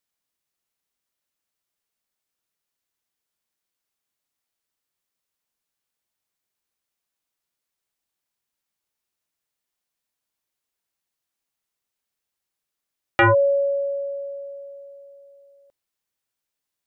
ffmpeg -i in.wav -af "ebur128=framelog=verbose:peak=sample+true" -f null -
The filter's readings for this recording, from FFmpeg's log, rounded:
Integrated loudness:
  I:         -21.3 LUFS
  Threshold: -34.1 LUFS
Loudness range:
  LRA:         7.3 LU
  Threshold: -45.2 LUFS
  LRA low:   -31.6 LUFS
  LRA high:  -24.2 LUFS
Sample peak:
  Peak:      -10.3 dBFS
True peak:
  Peak:      -10.3 dBFS